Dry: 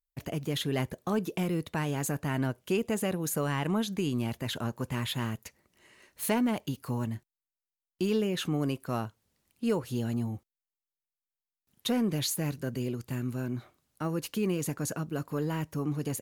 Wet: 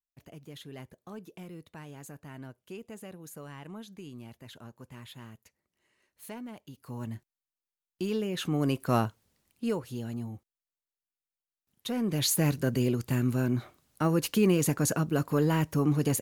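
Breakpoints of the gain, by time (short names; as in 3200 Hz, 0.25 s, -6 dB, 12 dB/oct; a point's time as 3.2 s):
6.67 s -14.5 dB
7.11 s -3 dB
8.26 s -3 dB
8.97 s +7 dB
9.95 s -5 dB
11.89 s -5 dB
12.36 s +6 dB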